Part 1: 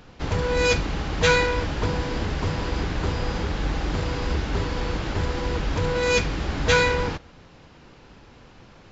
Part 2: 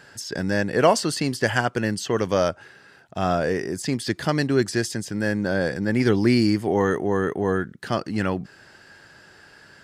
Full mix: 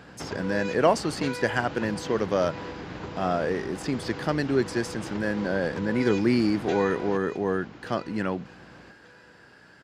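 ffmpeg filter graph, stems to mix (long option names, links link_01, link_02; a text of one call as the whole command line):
ffmpeg -i stem1.wav -i stem2.wav -filter_complex "[0:a]acompressor=threshold=-30dB:ratio=10,aeval=exprs='val(0)+0.00447*(sin(2*PI*60*n/s)+sin(2*PI*2*60*n/s)/2+sin(2*PI*3*60*n/s)/3+sin(2*PI*4*60*n/s)/4+sin(2*PI*5*60*n/s)/5)':channel_layout=same,volume=0.5dB,asplit=2[link_01][link_02];[link_02]volume=-12dB[link_03];[1:a]volume=-3dB[link_04];[link_03]aecho=0:1:1181|2362|3543|4724:1|0.25|0.0625|0.0156[link_05];[link_01][link_04][link_05]amix=inputs=3:normalize=0,highpass=140,highshelf=frequency=3600:gain=-7.5" out.wav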